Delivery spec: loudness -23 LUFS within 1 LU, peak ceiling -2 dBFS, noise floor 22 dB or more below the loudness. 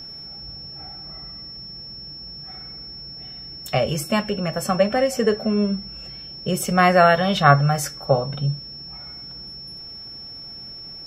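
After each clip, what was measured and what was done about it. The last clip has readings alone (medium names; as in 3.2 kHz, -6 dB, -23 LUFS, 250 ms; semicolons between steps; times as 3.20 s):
steady tone 5.4 kHz; tone level -35 dBFS; loudness -20.0 LUFS; peak level -2.0 dBFS; loudness target -23.0 LUFS
-> band-stop 5.4 kHz, Q 30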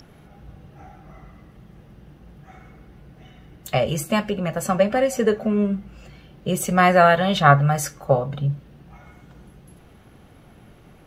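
steady tone not found; loudness -20.0 LUFS; peak level -2.0 dBFS; loudness target -23.0 LUFS
-> trim -3 dB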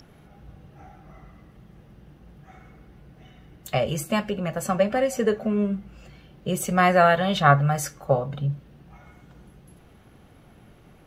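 loudness -23.0 LUFS; peak level -5.0 dBFS; noise floor -53 dBFS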